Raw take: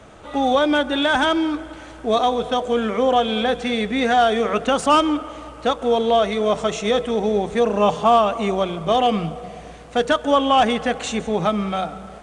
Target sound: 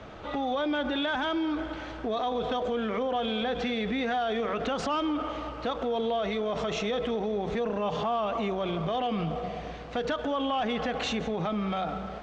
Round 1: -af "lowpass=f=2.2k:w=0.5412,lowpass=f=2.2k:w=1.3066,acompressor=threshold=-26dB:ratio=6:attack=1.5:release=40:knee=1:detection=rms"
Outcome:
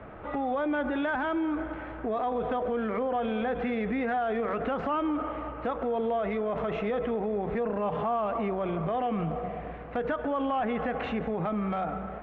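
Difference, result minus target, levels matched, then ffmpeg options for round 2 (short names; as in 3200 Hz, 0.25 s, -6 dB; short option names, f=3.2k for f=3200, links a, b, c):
4000 Hz band -13.0 dB
-af "lowpass=f=5.1k:w=0.5412,lowpass=f=5.1k:w=1.3066,acompressor=threshold=-26dB:ratio=6:attack=1.5:release=40:knee=1:detection=rms"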